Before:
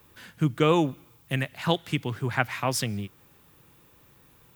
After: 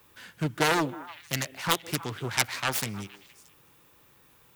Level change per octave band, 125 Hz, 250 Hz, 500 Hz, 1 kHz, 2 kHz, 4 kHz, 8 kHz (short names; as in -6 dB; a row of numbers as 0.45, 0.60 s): -6.5, -5.5, -5.5, -0.5, +1.5, +2.0, +5.0 dB